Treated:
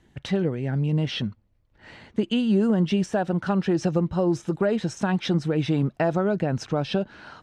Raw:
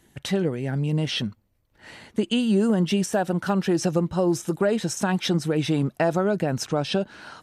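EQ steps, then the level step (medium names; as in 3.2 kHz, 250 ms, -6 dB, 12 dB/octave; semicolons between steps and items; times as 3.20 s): Bessel low-pass 4 kHz, order 2; bass shelf 120 Hz +6.5 dB; -1.5 dB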